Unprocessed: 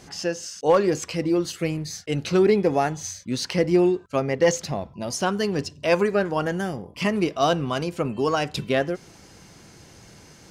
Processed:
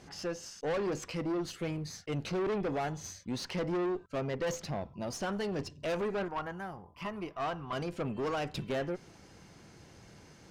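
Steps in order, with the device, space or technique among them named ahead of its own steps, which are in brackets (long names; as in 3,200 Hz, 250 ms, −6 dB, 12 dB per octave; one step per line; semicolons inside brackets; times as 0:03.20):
0:06.28–0:07.73: graphic EQ with 10 bands 125 Hz −7 dB, 250 Hz −9 dB, 500 Hz −10 dB, 1,000 Hz +6 dB, 2,000 Hz −6 dB, 4,000 Hz −8 dB, 8,000 Hz −11 dB
tube preamp driven hard (tube saturation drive 25 dB, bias 0.4; high-shelf EQ 5,000 Hz −8.5 dB)
level −4.5 dB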